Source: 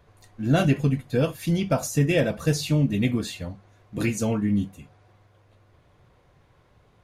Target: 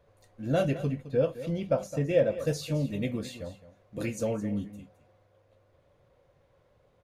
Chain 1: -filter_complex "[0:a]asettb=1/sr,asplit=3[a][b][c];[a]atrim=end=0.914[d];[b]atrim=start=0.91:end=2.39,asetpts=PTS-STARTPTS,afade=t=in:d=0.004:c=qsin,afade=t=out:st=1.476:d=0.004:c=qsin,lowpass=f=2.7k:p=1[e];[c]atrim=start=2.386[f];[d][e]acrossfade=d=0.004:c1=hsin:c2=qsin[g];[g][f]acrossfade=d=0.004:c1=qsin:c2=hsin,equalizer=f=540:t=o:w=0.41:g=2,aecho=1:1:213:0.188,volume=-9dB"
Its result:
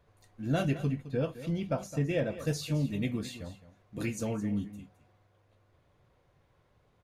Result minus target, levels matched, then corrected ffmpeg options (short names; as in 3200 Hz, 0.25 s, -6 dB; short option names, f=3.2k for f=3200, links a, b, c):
500 Hz band -4.0 dB
-filter_complex "[0:a]asettb=1/sr,asplit=3[a][b][c];[a]atrim=end=0.914[d];[b]atrim=start=0.91:end=2.39,asetpts=PTS-STARTPTS,afade=t=in:d=0.004:c=qsin,afade=t=out:st=1.476:d=0.004:c=qsin,lowpass=f=2.7k:p=1[e];[c]atrim=start=2.386[f];[d][e]acrossfade=d=0.004:c1=hsin:c2=qsin[g];[g][f]acrossfade=d=0.004:c1=qsin:c2=hsin,equalizer=f=540:t=o:w=0.41:g=12.5,aecho=1:1:213:0.188,volume=-9dB"